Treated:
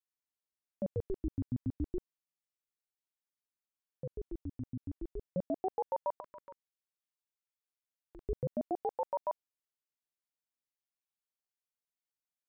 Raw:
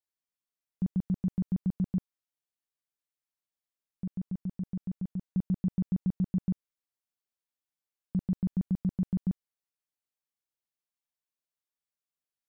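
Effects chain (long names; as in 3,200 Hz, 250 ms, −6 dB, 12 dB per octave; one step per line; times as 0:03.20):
0:06.20–0:08.23: high-pass filter 500 Hz 12 dB per octave
ring modulator whose carrier an LFO sweeps 430 Hz, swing 85%, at 0.32 Hz
level −3 dB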